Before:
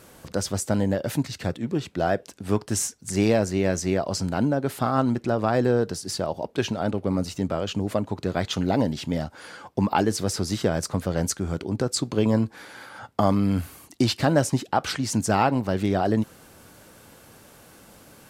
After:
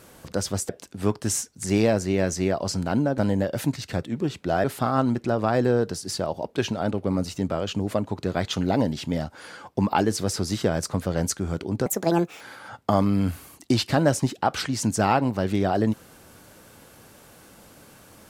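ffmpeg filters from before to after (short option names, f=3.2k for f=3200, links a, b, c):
-filter_complex "[0:a]asplit=6[a][b][c][d][e][f];[a]atrim=end=0.692[g];[b]atrim=start=2.148:end=4.642[h];[c]atrim=start=0.688:end=2.152[i];[d]atrim=start=4.638:end=11.864[j];[e]atrim=start=11.86:end=12.71,asetpts=PTS-STARTPTS,asetrate=68355,aresample=44100[k];[f]atrim=start=12.706[l];[g][h]acrossfade=d=0.004:c1=hsin:c2=hsin[m];[m][i]acrossfade=d=0.004:c1=hsin:c2=hsin[n];[n][j]acrossfade=d=0.004:c1=hsin:c2=hsin[o];[o][k]acrossfade=d=0.004:c1=hsin:c2=hsin[p];[p][l]acrossfade=d=0.004:c1=hsin:c2=hsin"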